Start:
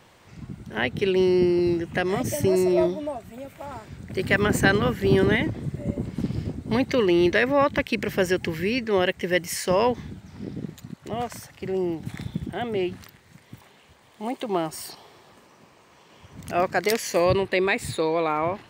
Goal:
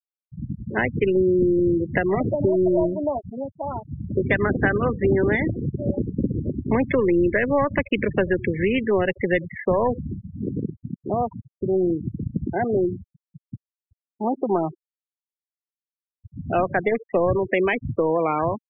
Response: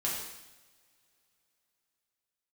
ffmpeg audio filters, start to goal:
-filter_complex "[0:a]aeval=exprs='0.596*(cos(1*acos(clip(val(0)/0.596,-1,1)))-cos(1*PI/2))+0.0075*(cos(8*acos(clip(val(0)/0.596,-1,1)))-cos(8*PI/2))':c=same,asplit=2[a][b];[b]aecho=0:1:76|152:0.0891|0.0178[c];[a][c]amix=inputs=2:normalize=0,acrossover=split=120|240|3400[d][e][f][g];[d]acompressor=threshold=-37dB:ratio=4[h];[e]acompressor=threshold=-41dB:ratio=4[i];[f]acompressor=threshold=-28dB:ratio=4[j];[g]acompressor=threshold=-48dB:ratio=4[k];[h][i][j][k]amix=inputs=4:normalize=0,afwtdn=0.0126,afftfilt=real='re*gte(hypot(re,im),0.0316)':imag='im*gte(hypot(re,im),0.0316)':win_size=1024:overlap=0.75,volume=8.5dB"

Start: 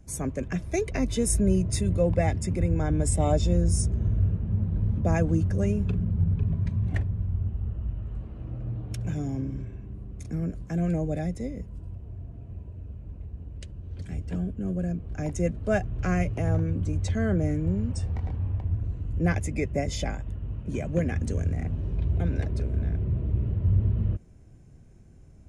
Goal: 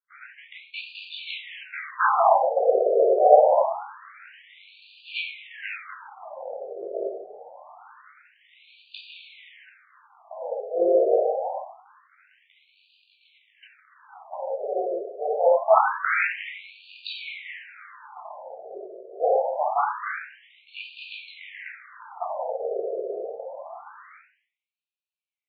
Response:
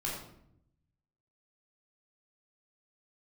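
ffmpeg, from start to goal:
-filter_complex "[0:a]aeval=exprs='0.316*(cos(1*acos(clip(val(0)/0.316,-1,1)))-cos(1*PI/2))+0.126*(cos(2*acos(clip(val(0)/0.316,-1,1)))-cos(2*PI/2))+0.1*(cos(4*acos(clip(val(0)/0.316,-1,1)))-cos(4*PI/2))+0.0398*(cos(7*acos(clip(val(0)/0.316,-1,1)))-cos(7*PI/2))+0.0282*(cos(8*acos(clip(val(0)/0.316,-1,1)))-cos(8*PI/2))':c=same,dynaudnorm=f=150:g=17:m=16dB,asplit=2[a][b];[b]acrusher=bits=6:dc=4:mix=0:aa=0.000001,volume=-11dB[c];[a][c]amix=inputs=2:normalize=0[d];[1:a]atrim=start_sample=2205,asetrate=41454,aresample=44100[e];[d][e]afir=irnorm=-1:irlink=0,afftfilt=real='re*between(b*sr/1024,510*pow(3400/510,0.5+0.5*sin(2*PI*0.25*pts/sr))/1.41,510*pow(3400/510,0.5+0.5*sin(2*PI*0.25*pts/sr))*1.41)':imag='im*between(b*sr/1024,510*pow(3400/510,0.5+0.5*sin(2*PI*0.25*pts/sr))/1.41,510*pow(3400/510,0.5+0.5*sin(2*PI*0.25*pts/sr))*1.41)':win_size=1024:overlap=0.75,volume=-1dB"

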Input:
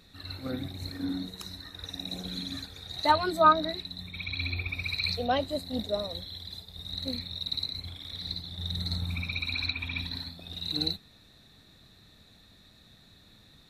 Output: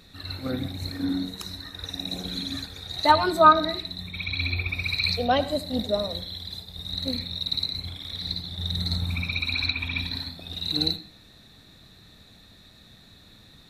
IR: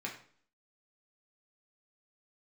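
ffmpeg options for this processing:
-filter_complex "[0:a]asplit=2[a][b];[1:a]atrim=start_sample=2205,adelay=80[c];[b][c]afir=irnorm=-1:irlink=0,volume=-16dB[d];[a][d]amix=inputs=2:normalize=0,volume=5dB"

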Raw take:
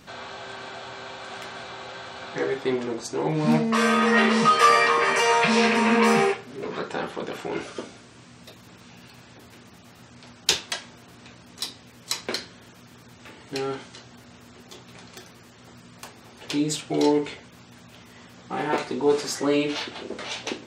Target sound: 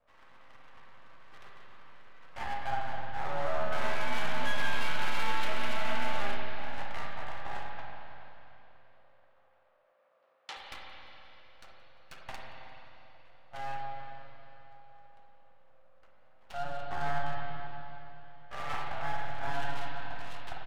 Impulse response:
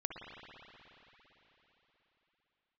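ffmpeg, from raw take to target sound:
-filter_complex "[0:a]agate=range=-8dB:threshold=-36dB:ratio=16:detection=peak,acrossover=split=2800[a][b];[b]acompressor=threshold=-43dB:ratio=4:attack=1:release=60[c];[a][c]amix=inputs=2:normalize=0,alimiter=limit=-15dB:level=0:latency=1:release=69,adynamicsmooth=sensitivity=7:basefreq=860,afreqshift=410,aeval=exprs='max(val(0),0)':c=same,asettb=1/sr,asplit=3[d][e][f];[d]atrim=end=7.744[g];[e]atrim=start=7.74:end=10.57,asetpts=PTS-STARTPTS,afade=t=in:d=0.004:c=qsin,afade=t=out:st=2.826:d=0.004:c=qsin,highpass=390,lowpass=5.5k[h];[f]atrim=start=10.566[i];[g][h]acrossfade=d=0.004:c1=hsin:c2=qsin[j];[j][i]acrossfade=d=0.004:c1=qsin:c2=hsin,asplit=4[k][l][m][n];[l]adelay=174,afreqshift=-110,volume=-23.5dB[o];[m]adelay=348,afreqshift=-220,volume=-29.9dB[p];[n]adelay=522,afreqshift=-330,volume=-36.3dB[q];[k][o][p][q]amix=inputs=4:normalize=0[r];[1:a]atrim=start_sample=2205,asetrate=52920,aresample=44100[s];[r][s]afir=irnorm=-1:irlink=0,volume=-5dB"

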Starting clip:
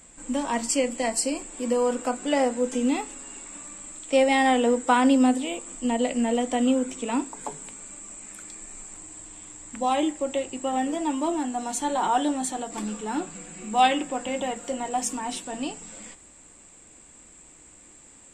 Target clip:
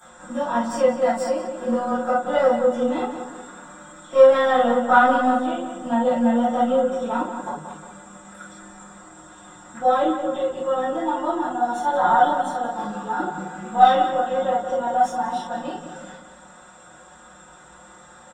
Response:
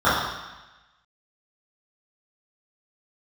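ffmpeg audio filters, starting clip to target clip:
-filter_complex "[0:a]acrossover=split=500[a][b];[b]acompressor=mode=upward:threshold=-32dB:ratio=2.5[c];[a][c]amix=inputs=2:normalize=0,aeval=exprs='(tanh(3.55*val(0)+0.55)-tanh(0.55))/3.55':c=same,aecho=1:1:5.5:0.85,asplit=2[d][e];[e]adelay=180,lowpass=f=3.4k:p=1,volume=-8dB,asplit=2[f][g];[g]adelay=180,lowpass=f=3.4k:p=1,volume=0.46,asplit=2[h][i];[i]adelay=180,lowpass=f=3.4k:p=1,volume=0.46,asplit=2[j][k];[k]adelay=180,lowpass=f=3.4k:p=1,volume=0.46,asplit=2[l][m];[m]adelay=180,lowpass=f=3.4k:p=1,volume=0.46[n];[d][f][h][j][l][n]amix=inputs=6:normalize=0[o];[1:a]atrim=start_sample=2205,afade=t=out:st=0.13:d=0.01,atrim=end_sample=6174[p];[o][p]afir=irnorm=-1:irlink=0,volume=-17dB"

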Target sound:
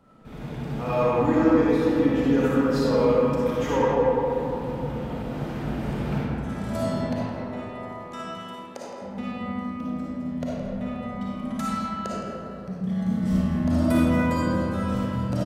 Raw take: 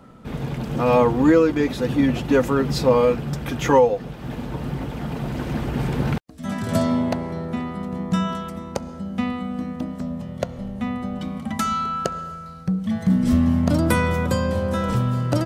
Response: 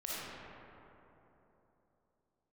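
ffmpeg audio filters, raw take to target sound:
-filter_complex "[0:a]asettb=1/sr,asplit=3[a][b][c];[a]atrim=end=6.854[d];[b]atrim=start=6.85:end=9.02,asetpts=PTS-STARTPTS,afade=t=in:d=0.004:c=qsin,afade=t=out:st=2.166:d=0.004:c=qsin,highpass=f=330:w=0.5412,highpass=f=330:w=1.3066[e];[c]atrim=start=9.016[f];[d][e]acrossfade=d=0.004:c1=hsin:c2=qsin[g];[g][f]acrossfade=d=0.004:c1=qsin:c2=hsin,aecho=1:1:165:0.211[h];[1:a]atrim=start_sample=2205[i];[h][i]afir=irnorm=-1:irlink=0,volume=-7dB"

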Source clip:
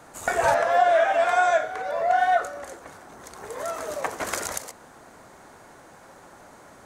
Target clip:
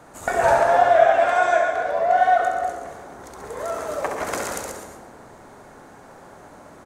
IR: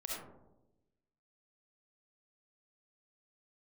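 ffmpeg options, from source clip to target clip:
-filter_complex "[0:a]tiltshelf=f=1.4k:g=3,aecho=1:1:67|137:0.501|0.398,asplit=2[a][b];[1:a]atrim=start_sample=2205,asetrate=29106,aresample=44100,adelay=120[c];[b][c]afir=irnorm=-1:irlink=0,volume=-10dB[d];[a][d]amix=inputs=2:normalize=0"

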